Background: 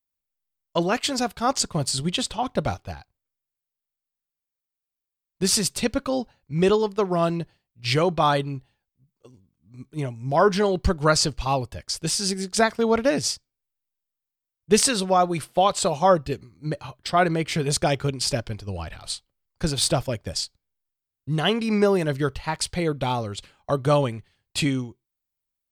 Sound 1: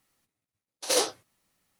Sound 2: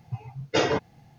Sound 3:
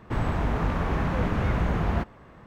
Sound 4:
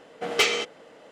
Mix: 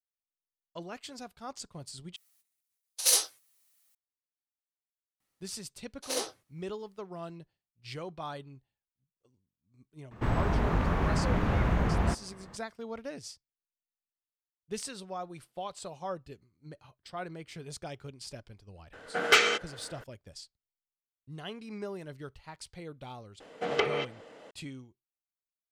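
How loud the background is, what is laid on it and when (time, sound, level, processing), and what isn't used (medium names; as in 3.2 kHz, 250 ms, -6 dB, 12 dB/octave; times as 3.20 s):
background -19.5 dB
2.16 s: replace with 1 -9 dB + tilt EQ +4.5 dB/octave
5.20 s: add 1 -8.5 dB
10.11 s: add 3 -2 dB
18.93 s: add 4 -2 dB + peaking EQ 1.5 kHz +13.5 dB 0.42 oct
23.40 s: add 4 -1.5 dB + low-pass that closes with the level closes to 1.1 kHz, closed at -18.5 dBFS
not used: 2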